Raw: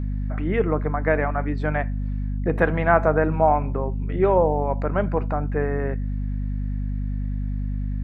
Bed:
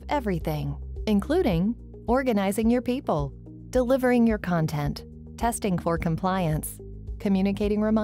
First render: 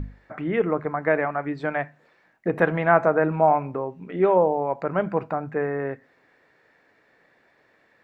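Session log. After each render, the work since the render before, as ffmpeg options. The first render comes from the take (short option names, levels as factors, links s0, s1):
-af "bandreject=f=50:t=h:w=6,bandreject=f=100:t=h:w=6,bandreject=f=150:t=h:w=6,bandreject=f=200:t=h:w=6,bandreject=f=250:t=h:w=6"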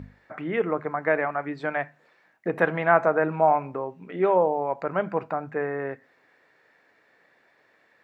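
-af "highpass=77,lowshelf=f=380:g=-6"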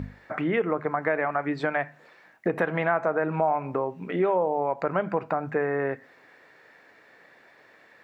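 -filter_complex "[0:a]asplit=2[s0][s1];[s1]alimiter=limit=0.141:level=0:latency=1:release=158,volume=1.26[s2];[s0][s2]amix=inputs=2:normalize=0,acompressor=threshold=0.0631:ratio=2.5"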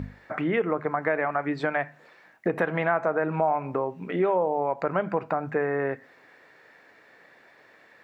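-af anull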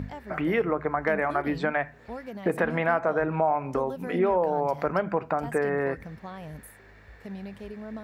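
-filter_complex "[1:a]volume=0.168[s0];[0:a][s0]amix=inputs=2:normalize=0"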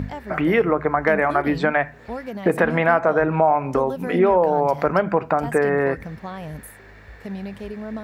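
-af "volume=2.24"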